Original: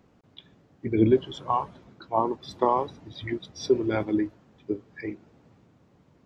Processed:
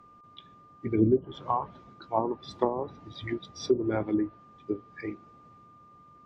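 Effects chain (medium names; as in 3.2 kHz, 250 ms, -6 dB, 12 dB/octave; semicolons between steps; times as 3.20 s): whistle 1.2 kHz -51 dBFS; low-pass that closes with the level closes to 470 Hz, closed at -17.5 dBFS; trim -2 dB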